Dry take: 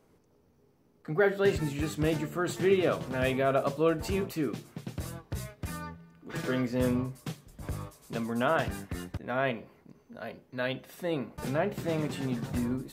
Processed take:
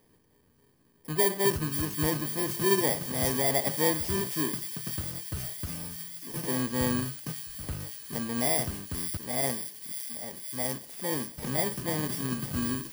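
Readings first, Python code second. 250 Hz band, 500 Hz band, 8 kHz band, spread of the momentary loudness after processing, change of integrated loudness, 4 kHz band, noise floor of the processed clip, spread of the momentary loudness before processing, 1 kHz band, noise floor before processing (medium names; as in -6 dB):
-1.0 dB, -2.5 dB, +14.5 dB, 11 LU, +2.0 dB, +6.5 dB, -65 dBFS, 14 LU, -0.5 dB, -65 dBFS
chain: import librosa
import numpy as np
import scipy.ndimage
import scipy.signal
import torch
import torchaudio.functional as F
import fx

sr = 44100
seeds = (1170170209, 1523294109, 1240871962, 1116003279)

y = fx.bit_reversed(x, sr, seeds[0], block=32)
y = fx.echo_wet_highpass(y, sr, ms=535, feedback_pct=77, hz=3200.0, wet_db=-7)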